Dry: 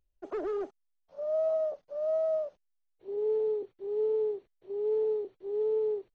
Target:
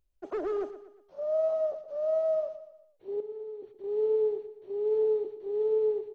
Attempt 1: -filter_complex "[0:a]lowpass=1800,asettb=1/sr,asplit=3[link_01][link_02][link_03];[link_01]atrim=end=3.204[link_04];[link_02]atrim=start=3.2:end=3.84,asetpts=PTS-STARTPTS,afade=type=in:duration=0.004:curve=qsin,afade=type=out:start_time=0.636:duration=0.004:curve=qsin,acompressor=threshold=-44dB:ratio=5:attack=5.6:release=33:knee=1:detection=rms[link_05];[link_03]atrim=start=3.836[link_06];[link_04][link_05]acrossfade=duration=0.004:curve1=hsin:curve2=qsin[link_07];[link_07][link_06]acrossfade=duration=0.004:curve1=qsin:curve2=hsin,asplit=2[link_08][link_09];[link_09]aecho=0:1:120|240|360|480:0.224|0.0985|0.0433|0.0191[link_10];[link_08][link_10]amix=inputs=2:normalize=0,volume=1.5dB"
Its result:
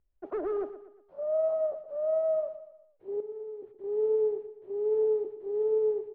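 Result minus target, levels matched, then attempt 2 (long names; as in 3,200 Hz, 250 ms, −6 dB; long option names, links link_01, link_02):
2,000 Hz band −2.5 dB
-filter_complex "[0:a]asettb=1/sr,asplit=3[link_01][link_02][link_03];[link_01]atrim=end=3.204[link_04];[link_02]atrim=start=3.2:end=3.84,asetpts=PTS-STARTPTS,afade=type=in:duration=0.004:curve=qsin,afade=type=out:start_time=0.636:duration=0.004:curve=qsin,acompressor=threshold=-44dB:ratio=5:attack=5.6:release=33:knee=1:detection=rms[link_05];[link_03]atrim=start=3.836[link_06];[link_04][link_05]acrossfade=duration=0.004:curve1=hsin:curve2=qsin[link_07];[link_07][link_06]acrossfade=duration=0.004:curve1=qsin:curve2=hsin,asplit=2[link_08][link_09];[link_09]aecho=0:1:120|240|360|480:0.224|0.0985|0.0433|0.0191[link_10];[link_08][link_10]amix=inputs=2:normalize=0,volume=1.5dB"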